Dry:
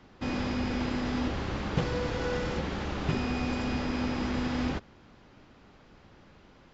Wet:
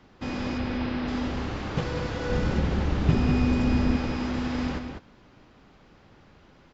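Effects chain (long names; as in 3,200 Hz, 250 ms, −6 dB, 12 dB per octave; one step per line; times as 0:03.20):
0:00.58–0:01.08: low-pass filter 4,700 Hz 24 dB per octave
0:02.29–0:03.97: low-shelf EQ 310 Hz +10 dB
slap from a distant wall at 34 metres, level −6 dB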